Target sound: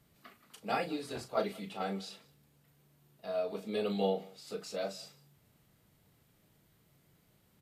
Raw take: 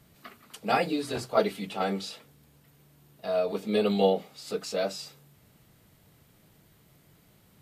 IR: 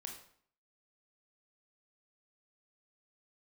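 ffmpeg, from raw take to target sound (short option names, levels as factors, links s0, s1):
-filter_complex "[0:a]asplit=2[s0][s1];[s1]adelay=36,volume=0.335[s2];[s0][s2]amix=inputs=2:normalize=0,aecho=1:1:182:0.0668,volume=0.376"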